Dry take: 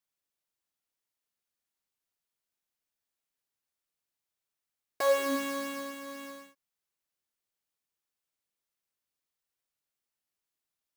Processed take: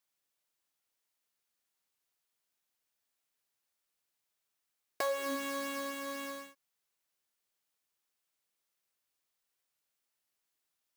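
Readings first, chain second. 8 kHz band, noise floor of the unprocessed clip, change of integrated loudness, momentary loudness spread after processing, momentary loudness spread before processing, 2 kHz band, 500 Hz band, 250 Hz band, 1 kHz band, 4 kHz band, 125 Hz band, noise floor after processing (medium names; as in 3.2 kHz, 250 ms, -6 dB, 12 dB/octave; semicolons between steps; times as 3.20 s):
-2.5 dB, under -85 dBFS, -6.0 dB, 10 LU, 18 LU, -2.5 dB, -7.0 dB, -5.0 dB, -3.5 dB, -2.5 dB, no reading, -85 dBFS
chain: bass shelf 290 Hz -6 dB; compression 4:1, threshold -37 dBFS, peak gain reduction 13 dB; trim +4 dB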